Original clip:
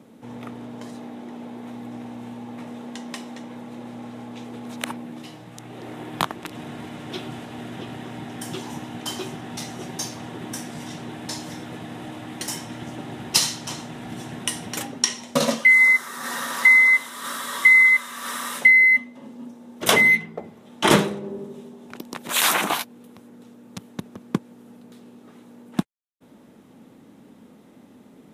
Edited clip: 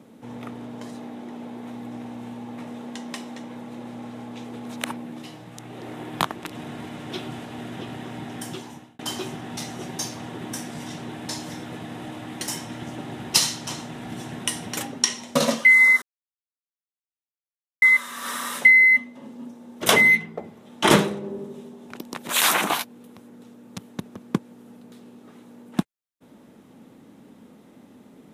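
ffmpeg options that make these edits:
ffmpeg -i in.wav -filter_complex "[0:a]asplit=4[link_01][link_02][link_03][link_04];[link_01]atrim=end=8.99,asetpts=PTS-STARTPTS,afade=type=out:start_time=8.38:duration=0.61[link_05];[link_02]atrim=start=8.99:end=16.02,asetpts=PTS-STARTPTS,afade=type=in:duration=0.004:curve=hsin,afade=type=out:start_time=7.026:duration=0.004:curve=hsin[link_06];[link_03]atrim=start=16.02:end=17.82,asetpts=PTS-STARTPTS,volume=0[link_07];[link_04]atrim=start=17.82,asetpts=PTS-STARTPTS,afade=type=in:duration=0.004:curve=hsin[link_08];[link_05][link_06][link_07][link_08]concat=n=4:v=0:a=1" out.wav

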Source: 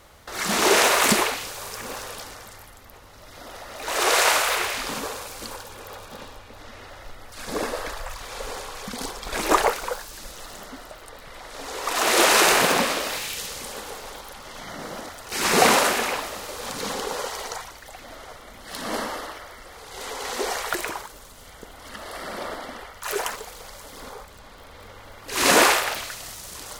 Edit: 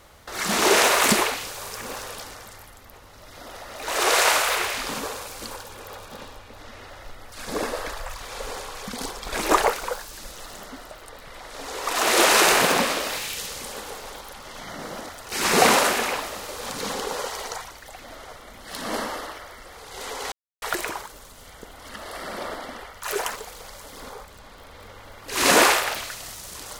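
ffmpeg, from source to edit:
ffmpeg -i in.wav -filter_complex "[0:a]asplit=3[link_01][link_02][link_03];[link_01]atrim=end=20.32,asetpts=PTS-STARTPTS,afade=type=out:start_time=20.316:duration=0.004:curve=hsin[link_04];[link_02]atrim=start=20.32:end=20.62,asetpts=PTS-STARTPTS,volume=0[link_05];[link_03]atrim=start=20.62,asetpts=PTS-STARTPTS,afade=type=in:duration=0.004:curve=hsin[link_06];[link_04][link_05][link_06]concat=n=3:v=0:a=1" out.wav

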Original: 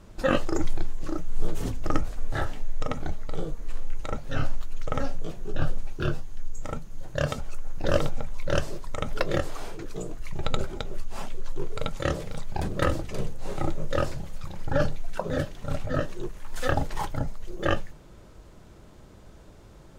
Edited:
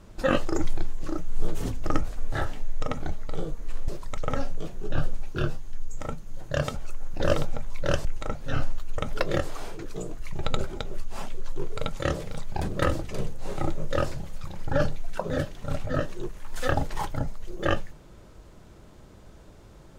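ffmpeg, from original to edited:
ffmpeg -i in.wav -filter_complex "[0:a]asplit=5[link_01][link_02][link_03][link_04][link_05];[link_01]atrim=end=3.882[link_06];[link_02]atrim=start=8.688:end=8.982[link_07];[link_03]atrim=start=4.808:end=8.692[link_08];[link_04]atrim=start=3.878:end=4.812[link_09];[link_05]atrim=start=8.978[link_10];[link_06][link_07]acrossfade=duration=0.004:curve1=hsin:curve2=hsin[link_11];[link_11][link_08]acrossfade=duration=0.004:curve1=hsin:curve2=hsin[link_12];[link_12][link_09]acrossfade=duration=0.004:curve1=hsin:curve2=hsin[link_13];[link_13][link_10]acrossfade=duration=0.004:curve1=hsin:curve2=hsin" out.wav

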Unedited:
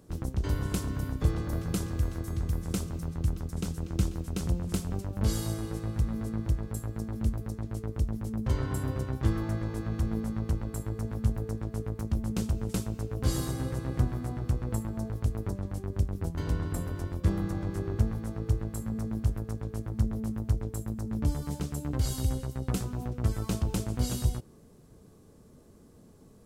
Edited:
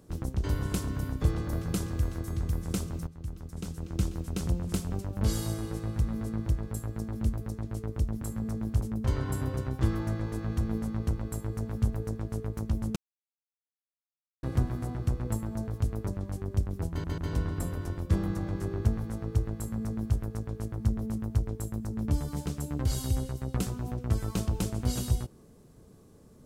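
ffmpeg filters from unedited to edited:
ffmpeg -i in.wav -filter_complex "[0:a]asplit=8[link_01][link_02][link_03][link_04][link_05][link_06][link_07][link_08];[link_01]atrim=end=3.07,asetpts=PTS-STARTPTS,afade=type=out:start_time=3.066:duration=0.004:curve=hsin:silence=0.211349[link_09];[link_02]atrim=start=3.07:end=8.232,asetpts=PTS-STARTPTS,afade=type=in:duration=1.15:silence=0.211349[link_10];[link_03]atrim=start=18.728:end=19.312[link_11];[link_04]atrim=start=8.228:end=12.38,asetpts=PTS-STARTPTS,afade=type=out:start_time=4.148:duration=0.004:curve=hsin[link_12];[link_05]atrim=start=12.38:end=13.85,asetpts=PTS-STARTPTS,volume=0[link_13];[link_06]atrim=start=13.85:end=16.462,asetpts=PTS-STARTPTS,afade=type=in:duration=0.004:curve=hsin[link_14];[link_07]atrim=start=16.318:end=16.462[link_15];[link_08]atrim=start=16.318[link_16];[link_09][link_10]concat=n=2:v=0:a=1[link_17];[link_17][link_11]acrossfade=duration=0.004:curve1=hsin:curve2=hsin[link_18];[link_12][link_13][link_14]concat=n=3:v=0:a=1[link_19];[link_18][link_19]acrossfade=duration=0.004:curve1=hsin:curve2=hsin[link_20];[link_20][link_15]acrossfade=duration=0.004:curve1=hsin:curve2=hsin[link_21];[link_21][link_16]acrossfade=duration=0.004:curve1=hsin:curve2=hsin" out.wav

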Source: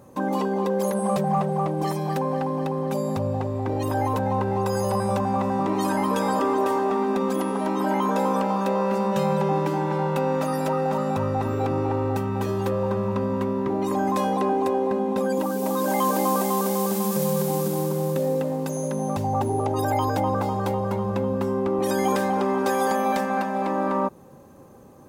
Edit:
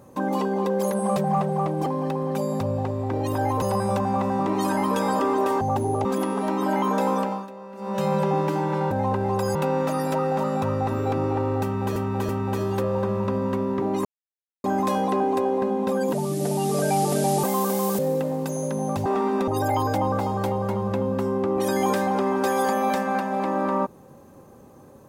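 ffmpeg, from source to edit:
ffmpeg -i in.wav -filter_complex "[0:a]asplit=17[link_01][link_02][link_03][link_04][link_05][link_06][link_07][link_08][link_09][link_10][link_11][link_12][link_13][link_14][link_15][link_16][link_17];[link_01]atrim=end=1.862[link_18];[link_02]atrim=start=2.418:end=4.182[link_19];[link_03]atrim=start=4.818:end=6.812[link_20];[link_04]atrim=start=19.258:end=19.702[link_21];[link_05]atrim=start=7.228:end=8.66,asetpts=PTS-STARTPTS,afade=type=out:start_time=1.012:duration=0.42:curve=qsin:silence=0.141254[link_22];[link_06]atrim=start=8.66:end=8.95,asetpts=PTS-STARTPTS,volume=-17dB[link_23];[link_07]atrim=start=8.95:end=10.092,asetpts=PTS-STARTPTS,afade=type=in:duration=0.42:curve=qsin:silence=0.141254[link_24];[link_08]atrim=start=4.178:end=4.822[link_25];[link_09]atrim=start=10.088:end=12.502[link_26];[link_10]atrim=start=12.168:end=12.502[link_27];[link_11]atrim=start=12.168:end=13.93,asetpts=PTS-STARTPTS,afade=type=out:start_time=1.758:duration=0.004:curve=hsin,apad=pad_dur=0.59[link_28];[link_12]atrim=start=13.93:end=15.424,asetpts=PTS-STARTPTS,afade=type=in:duration=0.004:curve=hsin[link_29];[link_13]atrim=start=15.42:end=16.4,asetpts=PTS-STARTPTS,asetrate=33075,aresample=44100[link_30];[link_14]atrim=start=16.396:end=16.952[link_31];[link_15]atrim=start=18.188:end=19.262[link_32];[link_16]atrim=start=6.808:end=7.232[link_33];[link_17]atrim=start=19.698[link_34];[link_18][link_19]acrossfade=duration=0.004:curve1=hsin:curve2=hsin[link_35];[link_35][link_20]acrossfade=duration=0.004:curve1=hsin:curve2=hsin[link_36];[link_36][link_21]acrossfade=duration=0.004:curve1=hsin:curve2=hsin[link_37];[link_22][link_23][link_24]concat=n=3:v=0:a=1[link_38];[link_37][link_38]acrossfade=duration=0.004:curve1=hsin:curve2=hsin[link_39];[link_39][link_25]acrossfade=duration=0.004:curve1=hsin:curve2=hsin[link_40];[link_40][link_26]acrossfade=duration=0.004:curve1=hsin:curve2=hsin[link_41];[link_41][link_27]acrossfade=duration=0.004:curve1=hsin:curve2=hsin[link_42];[link_28][link_29]concat=n=2:v=0:a=1[link_43];[link_42][link_43]acrossfade=duration=0.004:curve1=hsin:curve2=hsin[link_44];[link_44][link_30]acrossfade=duration=0.004:curve1=hsin:curve2=hsin[link_45];[link_45][link_31]acrossfade=duration=0.004:curve1=hsin:curve2=hsin[link_46];[link_46][link_32]acrossfade=duration=0.004:curve1=hsin:curve2=hsin[link_47];[link_47][link_33]acrossfade=duration=0.004:curve1=hsin:curve2=hsin[link_48];[link_48][link_34]acrossfade=duration=0.004:curve1=hsin:curve2=hsin" out.wav

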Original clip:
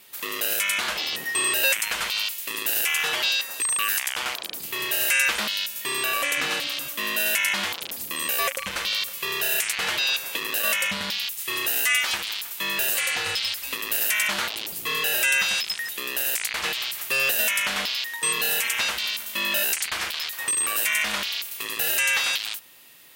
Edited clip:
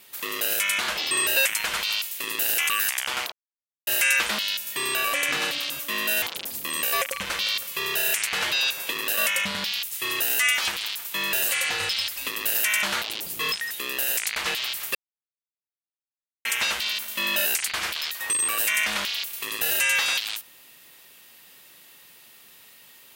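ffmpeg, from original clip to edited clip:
ffmpeg -i in.wav -filter_complex "[0:a]asplit=9[link_01][link_02][link_03][link_04][link_05][link_06][link_07][link_08][link_09];[link_01]atrim=end=1.112[link_10];[link_02]atrim=start=1.378:end=2.962[link_11];[link_03]atrim=start=3.778:end=4.41,asetpts=PTS-STARTPTS,afade=type=out:start_time=0.628:duration=0.004:curve=hsin[link_12];[link_04]atrim=start=4.41:end=4.96,asetpts=PTS-STARTPTS,volume=0[link_13];[link_05]atrim=start=4.96:end=7.312,asetpts=PTS-STARTPTS,afade=type=in:duration=0.004:curve=hsin[link_14];[link_06]atrim=start=7.678:end=14.982[link_15];[link_07]atrim=start=15.698:end=17.13,asetpts=PTS-STARTPTS,afade=type=out:start_time=1.428:duration=0.004:curve=hsin[link_16];[link_08]atrim=start=17.13:end=18.63,asetpts=PTS-STARTPTS,volume=0[link_17];[link_09]atrim=start=18.63,asetpts=PTS-STARTPTS,afade=type=in:duration=0.004:curve=hsin[link_18];[link_10][link_11]acrossfade=duration=0.004:curve1=hsin:curve2=hsin[link_19];[link_12][link_13][link_14]concat=n=3:v=0:a=1[link_20];[link_19][link_20]acrossfade=duration=0.004:curve1=hsin:curve2=hsin[link_21];[link_21][link_15]acrossfade=duration=0.004:curve1=hsin:curve2=hsin[link_22];[link_16][link_17][link_18]concat=n=3:v=0:a=1[link_23];[link_22][link_23]acrossfade=duration=0.004:curve1=hsin:curve2=hsin" out.wav

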